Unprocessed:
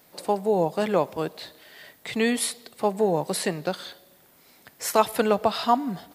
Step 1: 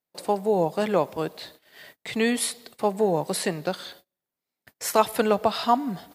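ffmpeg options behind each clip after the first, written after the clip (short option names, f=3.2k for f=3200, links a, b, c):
-af "agate=range=-32dB:threshold=-48dB:ratio=16:detection=peak"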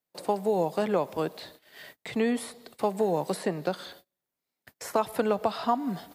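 -filter_complex "[0:a]acrossover=split=140|1500[a][b][c];[a]acompressor=threshold=-50dB:ratio=4[d];[b]acompressor=threshold=-22dB:ratio=4[e];[c]acompressor=threshold=-42dB:ratio=4[f];[d][e][f]amix=inputs=3:normalize=0"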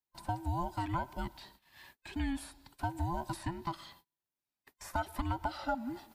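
-af "afftfilt=real='real(if(between(b,1,1008),(2*floor((b-1)/24)+1)*24-b,b),0)':imag='imag(if(between(b,1,1008),(2*floor((b-1)/24)+1)*24-b,b),0)*if(between(b,1,1008),-1,1)':win_size=2048:overlap=0.75,volume=-8.5dB"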